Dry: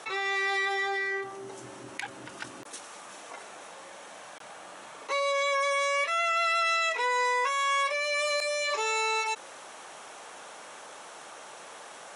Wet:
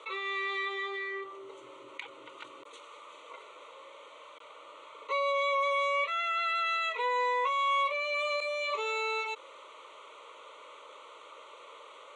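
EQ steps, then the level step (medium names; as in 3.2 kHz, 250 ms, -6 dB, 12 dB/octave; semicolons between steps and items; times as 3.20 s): cabinet simulation 330–5800 Hz, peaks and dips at 360 Hz -5 dB, 810 Hz -7 dB, 1.7 kHz -6 dB, 2.7 kHz -5 dB, 4.9 kHz -5 dB; static phaser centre 1.1 kHz, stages 8; +1.5 dB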